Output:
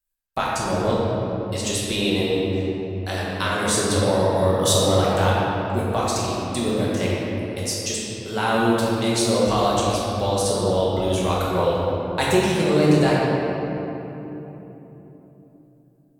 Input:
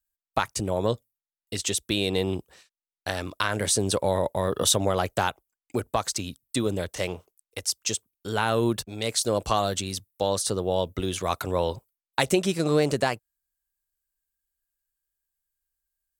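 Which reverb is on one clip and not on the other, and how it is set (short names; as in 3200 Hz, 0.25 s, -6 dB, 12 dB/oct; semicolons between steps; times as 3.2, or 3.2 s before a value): shoebox room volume 210 m³, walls hard, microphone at 1.1 m; gain -2.5 dB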